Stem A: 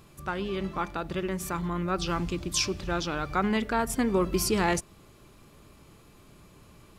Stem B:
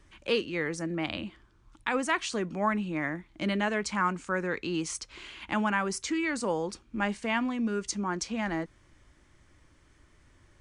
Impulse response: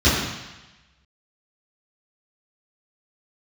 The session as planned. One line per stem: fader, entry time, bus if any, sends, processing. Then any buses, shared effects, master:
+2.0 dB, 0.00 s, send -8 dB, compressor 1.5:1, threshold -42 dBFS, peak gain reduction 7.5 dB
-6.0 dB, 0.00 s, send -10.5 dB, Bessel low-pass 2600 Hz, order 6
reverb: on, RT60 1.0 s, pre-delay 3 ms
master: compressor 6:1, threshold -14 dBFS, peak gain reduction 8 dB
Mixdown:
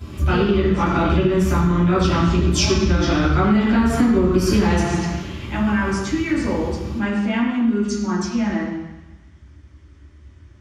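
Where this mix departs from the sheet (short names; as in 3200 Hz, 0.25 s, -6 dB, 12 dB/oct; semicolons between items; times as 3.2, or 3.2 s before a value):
stem A: missing compressor 1.5:1, threshold -42 dBFS, peak gain reduction 7.5 dB; stem B: missing Bessel low-pass 2600 Hz, order 6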